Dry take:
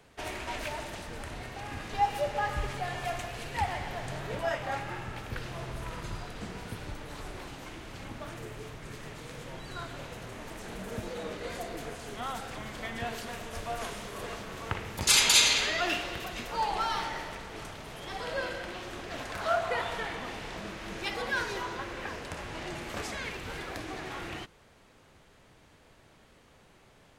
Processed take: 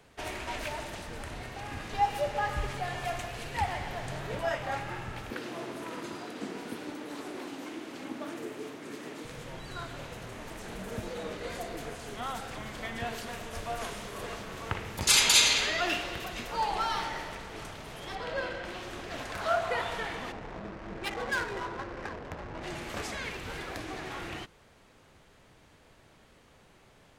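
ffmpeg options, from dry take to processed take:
-filter_complex "[0:a]asettb=1/sr,asplit=3[s0][s1][s2];[s0]atrim=end=5.304[s3];[s1]atrim=start=5.3:end=9.25,asetpts=PTS-STARTPTS,afade=t=in:d=0.004:c=qsin,afade=t=out:st=3.946:d=0.004:c=qsin,highpass=f=280:t=q:w=3[s4];[s2]atrim=start=9.246[s5];[s3][s4]acrossfade=d=0.004:c1=hsin:c2=qsin[s6];[s6][s5]acrossfade=d=0.004:c1=qsin:c2=hsin,asettb=1/sr,asplit=3[s7][s8][s9];[s7]atrim=end=18.154[s10];[s8]atrim=start=18.15:end=18.65,asetpts=PTS-STARTPTS,afade=t=in:d=0.004:c=qsin,afade=t=out:st=0.496:d=0.004:c=qsin,adynamicsmooth=sensitivity=6.5:basefreq=4300[s11];[s9]atrim=start=18.646[s12];[s10][s11]acrossfade=d=0.004:c1=hsin:c2=qsin[s13];[s13][s12]acrossfade=d=0.004:c1=qsin:c2=hsin,asplit=3[s14][s15][s16];[s14]afade=t=out:st=20.31:d=0.02[s17];[s15]adynamicsmooth=sensitivity=7:basefreq=560,afade=t=in:st=20.31:d=0.02,afade=t=out:st=22.62:d=0.02[s18];[s16]afade=t=in:st=22.62:d=0.02[s19];[s17][s18][s19]amix=inputs=3:normalize=0"

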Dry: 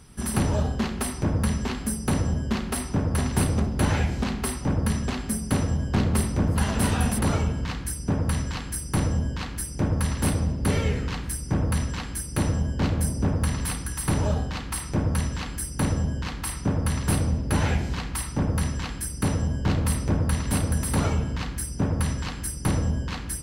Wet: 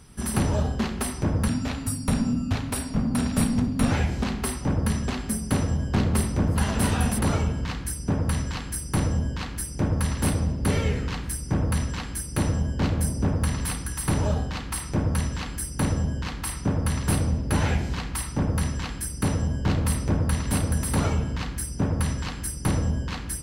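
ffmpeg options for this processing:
-filter_complex "[0:a]asettb=1/sr,asplit=3[s0][s1][s2];[s0]atrim=end=1.484[s3];[s1]atrim=start=1.48:end=3.92,asetpts=PTS-STARTPTS,afade=t=in:d=0.004:c=qsin,afade=t=out:st=2.436:d=0.004:c=qsin,afreqshift=-320[s4];[s2]atrim=start=3.916[s5];[s3][s4]acrossfade=d=0.004:c1=hsin:c2=qsin[s6];[s6][s5]acrossfade=d=0.004:c1=qsin:c2=hsin"

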